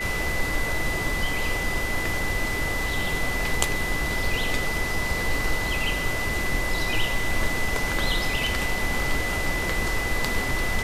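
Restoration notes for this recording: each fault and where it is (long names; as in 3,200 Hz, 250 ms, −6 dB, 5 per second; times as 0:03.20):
whistle 2,000 Hz −28 dBFS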